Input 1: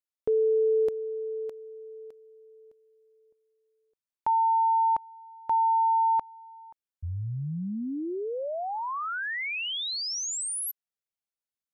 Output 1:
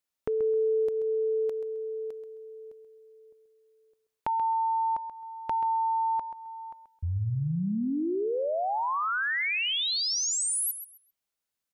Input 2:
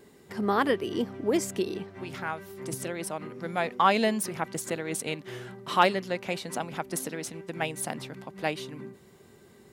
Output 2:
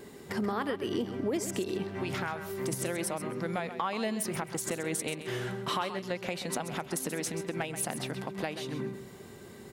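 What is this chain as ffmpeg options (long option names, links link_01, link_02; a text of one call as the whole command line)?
ffmpeg -i in.wav -filter_complex "[0:a]acompressor=threshold=-32dB:ratio=12:attack=1.9:release=417:knee=6:detection=peak,asplit=2[link_01][link_02];[link_02]aecho=0:1:132|264|396:0.282|0.0592|0.0124[link_03];[link_01][link_03]amix=inputs=2:normalize=0,volume=6.5dB" out.wav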